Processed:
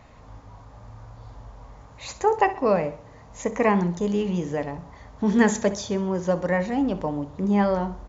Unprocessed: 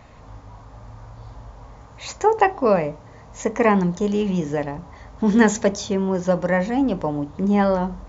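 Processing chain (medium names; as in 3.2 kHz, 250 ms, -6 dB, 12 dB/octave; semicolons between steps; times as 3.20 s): feedback delay 64 ms, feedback 44%, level -15 dB; trim -3.5 dB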